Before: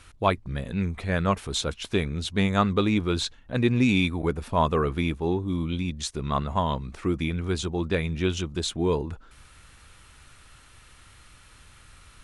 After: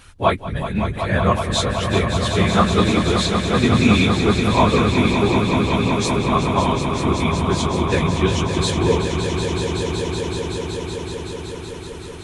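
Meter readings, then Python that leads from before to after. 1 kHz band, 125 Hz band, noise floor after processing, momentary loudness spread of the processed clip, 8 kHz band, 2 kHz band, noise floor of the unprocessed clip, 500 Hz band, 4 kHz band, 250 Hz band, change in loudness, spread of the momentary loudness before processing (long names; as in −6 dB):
+9.0 dB, +8.5 dB, −33 dBFS, 11 LU, +9.0 dB, +9.0 dB, −53 dBFS, +8.5 dB, +9.0 dB, +8.0 dB, +7.5 dB, 7 LU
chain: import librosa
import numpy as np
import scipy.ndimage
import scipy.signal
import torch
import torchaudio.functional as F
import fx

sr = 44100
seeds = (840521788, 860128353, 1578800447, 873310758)

y = fx.phase_scramble(x, sr, seeds[0], window_ms=50)
y = fx.echo_swell(y, sr, ms=188, loudest=5, wet_db=-9.0)
y = y * librosa.db_to_amplitude(5.5)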